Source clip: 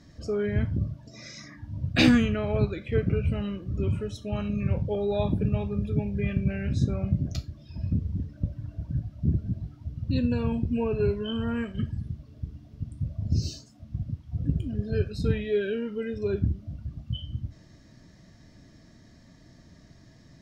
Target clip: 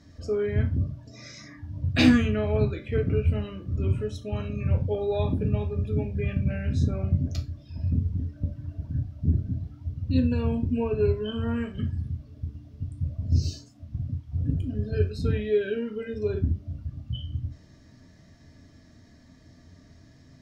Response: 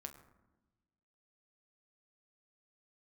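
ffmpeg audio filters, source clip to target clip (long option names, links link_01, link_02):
-filter_complex "[1:a]atrim=start_sample=2205,atrim=end_sample=3528,asetrate=52920,aresample=44100[link_01];[0:a][link_01]afir=irnorm=-1:irlink=0,volume=6dB"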